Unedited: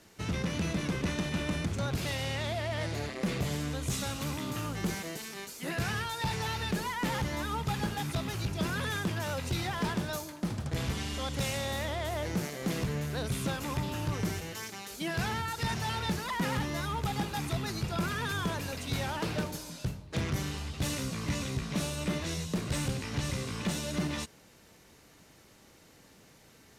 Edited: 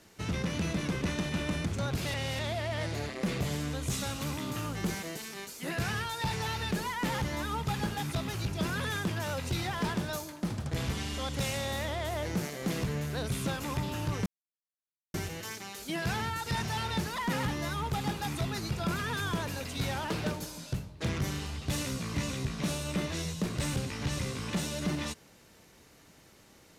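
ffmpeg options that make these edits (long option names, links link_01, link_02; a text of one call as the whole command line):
ffmpeg -i in.wav -filter_complex "[0:a]asplit=4[link_01][link_02][link_03][link_04];[link_01]atrim=end=2.142[link_05];[link_02]atrim=start=2.138:end=2.392,asetpts=PTS-STARTPTS,areverse[link_06];[link_03]atrim=start=2.388:end=14.26,asetpts=PTS-STARTPTS,afade=type=out:start_time=11.868:duration=0.004:curve=hsin,apad=pad_dur=0.88[link_07];[link_04]atrim=start=14.26,asetpts=PTS-STARTPTS,afade=type=in:duration=0.004:curve=hsin[link_08];[link_05][link_06]acrossfade=duration=0.004:curve1=hsin:curve2=hsin[link_09];[link_07][link_08]concat=n=2:v=0:a=1[link_10];[link_09][link_10]acrossfade=duration=0.004:curve1=hsin:curve2=hsin" out.wav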